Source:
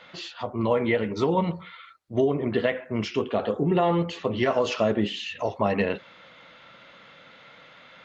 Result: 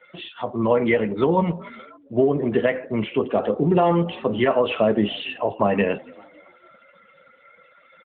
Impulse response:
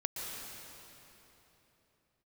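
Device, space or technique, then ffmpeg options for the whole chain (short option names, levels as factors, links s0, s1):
mobile call with aggressive noise cancelling: -filter_complex "[0:a]asettb=1/sr,asplit=3[s0][s1][s2];[s0]atrim=end=2.184[s3];[s1]atrim=start=2.18:end=3.47,asetpts=PTS-STARTPTS,afade=t=in:d=0.004:c=qsin,afade=t=out:st=1.286:d=0.004:c=qsin,acrossover=split=3600[s4][s5];[s5]acompressor=threshold=0.00398:ratio=4:attack=1:release=60[s6];[s4][s6]amix=inputs=2:normalize=0[s7];[s2]atrim=start=3.466[s8];[s3][s7]acrossfade=d=0.004:c1=hsin:c2=qsin[s9];[s9][s8]acrossfade=d=0.004:c1=qsin:c2=hsin,asplit=4[s10][s11][s12][s13];[s11]adelay=280,afreqshift=52,volume=0.0708[s14];[s12]adelay=560,afreqshift=104,volume=0.0367[s15];[s13]adelay=840,afreqshift=156,volume=0.0191[s16];[s10][s14][s15][s16]amix=inputs=4:normalize=0,highpass=110,afftdn=nr=20:nf=-45,volume=1.68" -ar 8000 -c:a libopencore_amrnb -b:a 12200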